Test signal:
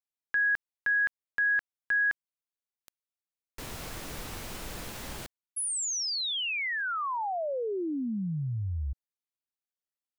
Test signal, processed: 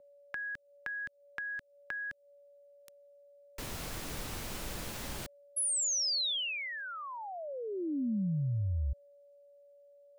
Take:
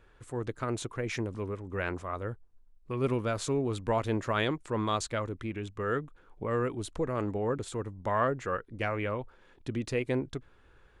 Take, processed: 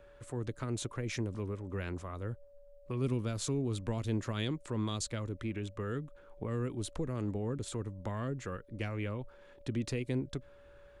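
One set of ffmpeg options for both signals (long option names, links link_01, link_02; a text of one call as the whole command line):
ffmpeg -i in.wav -filter_complex "[0:a]aeval=exprs='val(0)+0.00141*sin(2*PI*570*n/s)':channel_layout=same,acrossover=split=310|3200[link_01][link_02][link_03];[link_02]acompressor=threshold=-42dB:ratio=6:attack=9.3:release=333:knee=2.83:detection=peak[link_04];[link_01][link_04][link_03]amix=inputs=3:normalize=0" out.wav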